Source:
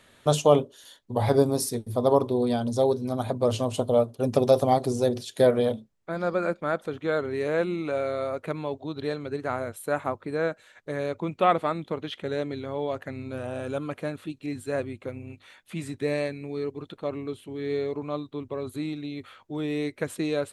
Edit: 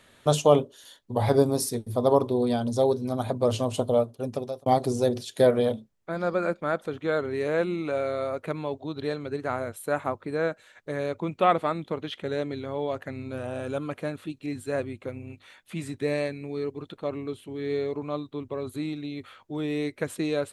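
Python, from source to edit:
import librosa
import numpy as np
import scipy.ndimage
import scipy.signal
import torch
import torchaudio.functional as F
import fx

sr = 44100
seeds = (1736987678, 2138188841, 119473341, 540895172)

y = fx.edit(x, sr, fx.fade_out_span(start_s=3.87, length_s=0.79), tone=tone)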